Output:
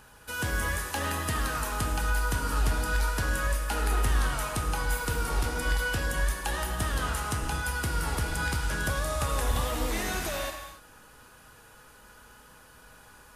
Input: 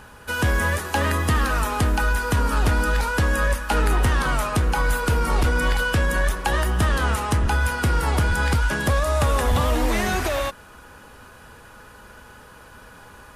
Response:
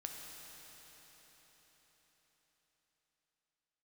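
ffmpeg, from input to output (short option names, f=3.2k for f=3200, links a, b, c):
-filter_complex "[0:a]highshelf=f=3.9k:g=8.5[a];[1:a]atrim=start_sample=2205,afade=t=out:st=0.34:d=0.01,atrim=end_sample=15435[b];[a][b]afir=irnorm=-1:irlink=0,volume=-6.5dB"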